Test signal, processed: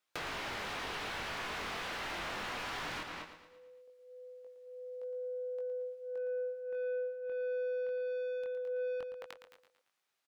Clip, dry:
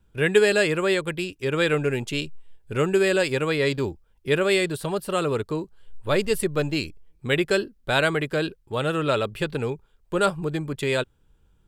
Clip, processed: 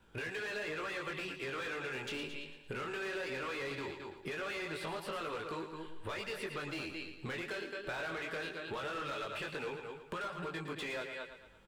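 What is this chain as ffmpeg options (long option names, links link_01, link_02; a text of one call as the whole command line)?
ffmpeg -i in.wav -filter_complex "[0:a]acrossover=split=920|4900[link_01][link_02][link_03];[link_01]acompressor=threshold=-31dB:ratio=4[link_04];[link_02]acompressor=threshold=-28dB:ratio=4[link_05];[link_03]acompressor=threshold=-48dB:ratio=4[link_06];[link_04][link_05][link_06]amix=inputs=3:normalize=0,asplit=2[link_07][link_08];[link_08]adelay=215.7,volume=-16dB,highshelf=frequency=4000:gain=-4.85[link_09];[link_07][link_09]amix=inputs=2:normalize=0,acrossover=split=1400[link_10][link_11];[link_10]alimiter=level_in=1dB:limit=-24dB:level=0:latency=1:release=415,volume=-1dB[link_12];[link_11]asoftclip=type=tanh:threshold=-33.5dB[link_13];[link_12][link_13]amix=inputs=2:normalize=0,flanger=delay=18:depth=6.2:speed=0.19,asplit=2[link_14][link_15];[link_15]highpass=frequency=720:poles=1,volume=22dB,asoftclip=type=tanh:threshold=-20.5dB[link_16];[link_14][link_16]amix=inputs=2:normalize=0,lowpass=frequency=2500:poles=1,volume=-6dB,acompressor=threshold=-38dB:ratio=4,asplit=2[link_17][link_18];[link_18]aecho=0:1:114|228|342|456|570:0.335|0.164|0.0804|0.0394|0.0193[link_19];[link_17][link_19]amix=inputs=2:normalize=0,volume=-2dB" out.wav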